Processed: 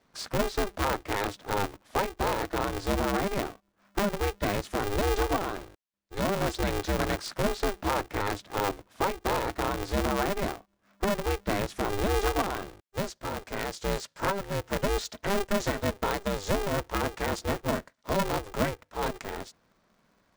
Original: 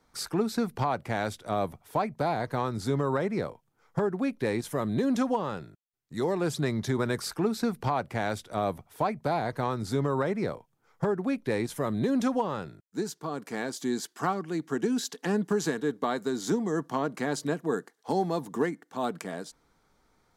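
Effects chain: low-pass 6.2 kHz 12 dB/octave; polarity switched at an audio rate 200 Hz

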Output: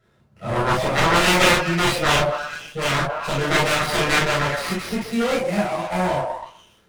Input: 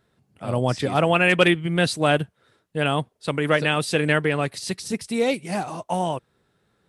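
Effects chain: repeats whose band climbs or falls 126 ms, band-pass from 690 Hz, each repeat 0.7 oct, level -5 dB; Chebyshev shaper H 7 -9 dB, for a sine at -3 dBFS; reverberation, pre-delay 3 ms, DRR -7.5 dB; sliding maximum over 5 samples; trim -11.5 dB

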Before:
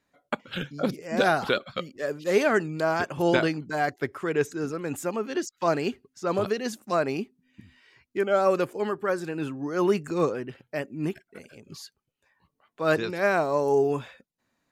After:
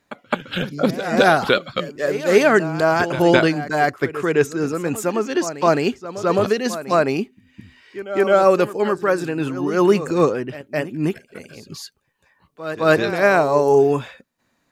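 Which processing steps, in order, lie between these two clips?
pre-echo 212 ms -13 dB; trim +8 dB

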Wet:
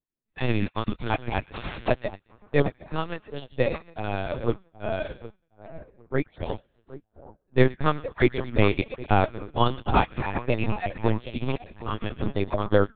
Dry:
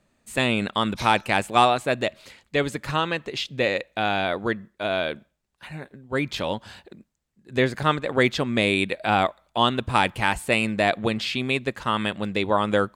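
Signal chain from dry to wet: random holes in the spectrogram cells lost 20%; 4.01–4.73 s: band-stop 740 Hz, Q 22; tilt EQ -2.5 dB/octave; 7.88–9.09 s: hum notches 60/120/180/240/300 Hz; in parallel at -2.5 dB: peak limiter -12 dBFS, peak gain reduction 7.5 dB; 1.43–1.88 s: on the sum: integer overflow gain 15 dB; two-band feedback delay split 1.3 kHz, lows 768 ms, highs 115 ms, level -6.5 dB; LPC vocoder at 8 kHz pitch kept; upward expansion 2.5:1, over -35 dBFS; trim -1 dB

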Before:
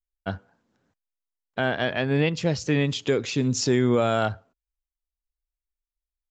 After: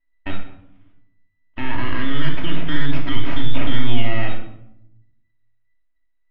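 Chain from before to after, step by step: every band turned upside down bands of 2 kHz; band-stop 1.8 kHz, Q 13; full-wave rectifier; low-pass 2.7 kHz 24 dB/octave; peaking EQ 270 Hz +13 dB 0.21 oct; peak limiter -22.5 dBFS, peak gain reduction 12 dB; simulated room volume 2000 m³, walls furnished, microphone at 2.8 m; trim +8 dB

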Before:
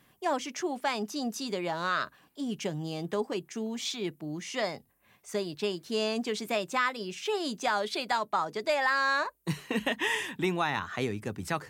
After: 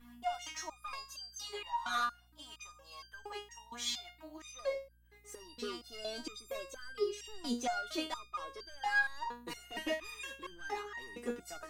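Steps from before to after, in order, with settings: high-pass sweep 1 kHz -> 340 Hz, 4.28–4.82 s; saturation -26 dBFS, distortion -10 dB; hum 60 Hz, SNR 19 dB; resonator arpeggio 4.3 Hz 240–1600 Hz; trim +11.5 dB

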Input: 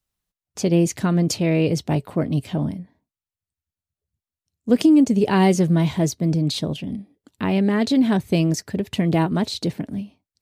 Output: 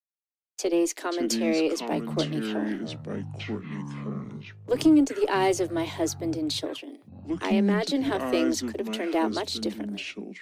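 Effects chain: gate -36 dBFS, range -44 dB; steep high-pass 280 Hz 96 dB/octave; in parallel at -7 dB: one-sided clip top -22.5 dBFS; on the sum: bit crusher 12-bit; ever faster or slower copies 237 ms, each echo -7 st, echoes 3, each echo -6 dB; trim -6 dB

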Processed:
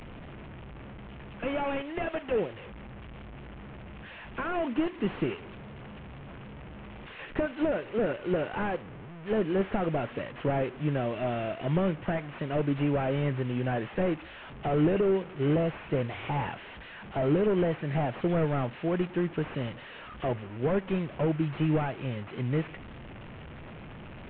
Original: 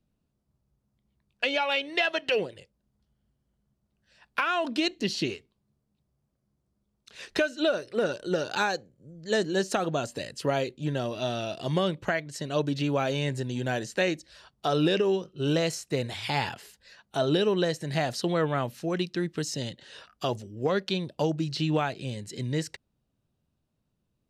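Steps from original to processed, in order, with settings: one-bit delta coder 16 kbps, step -39 dBFS; trim +1 dB

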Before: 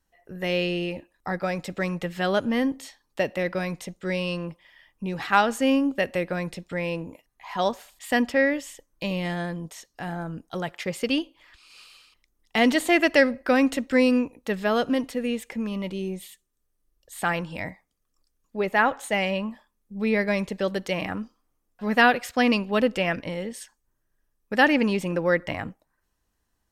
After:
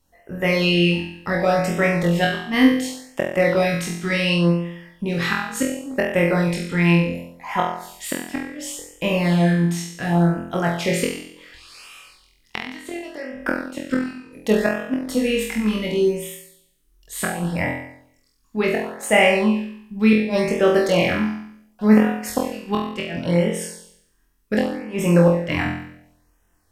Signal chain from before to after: inverted gate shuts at -14 dBFS, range -25 dB; flutter echo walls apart 4 m, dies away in 0.7 s; LFO notch sine 0.69 Hz 520–4400 Hz; trim +7 dB

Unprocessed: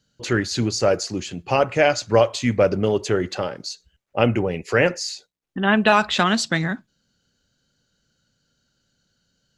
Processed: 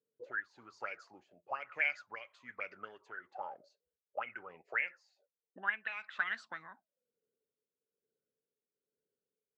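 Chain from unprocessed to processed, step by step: auto-wah 430–2200 Hz, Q 13, up, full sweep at -13.5 dBFS; tremolo 1.1 Hz, depth 55%

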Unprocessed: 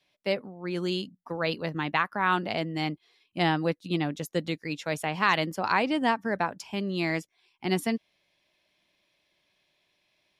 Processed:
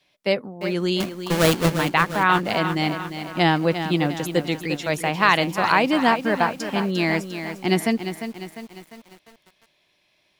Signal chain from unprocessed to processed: 1.00–1.70 s: square wave that keeps the level; bit-crushed delay 350 ms, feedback 55%, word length 8-bit, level -9 dB; trim +6.5 dB

